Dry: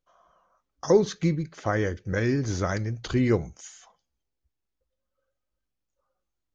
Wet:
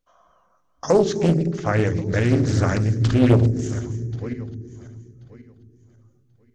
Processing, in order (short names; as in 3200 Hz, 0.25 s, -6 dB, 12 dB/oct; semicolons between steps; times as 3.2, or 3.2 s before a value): regenerating reverse delay 0.542 s, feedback 41%, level -13 dB; bell 110 Hz +7 dB 0.34 oct; on a send at -3 dB: brick-wall FIR band-stop 460–5500 Hz + reverb RT60 2.1 s, pre-delay 4 ms; on the sum: Doppler distortion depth 0.83 ms; gain +3.5 dB